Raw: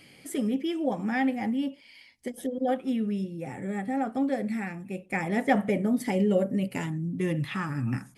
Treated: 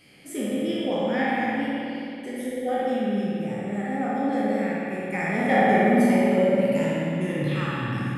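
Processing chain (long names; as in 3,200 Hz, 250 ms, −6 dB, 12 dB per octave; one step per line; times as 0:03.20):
peak hold with a decay on every bin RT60 1.37 s
spring reverb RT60 2.6 s, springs 54 ms, chirp 30 ms, DRR −3.5 dB
level −4 dB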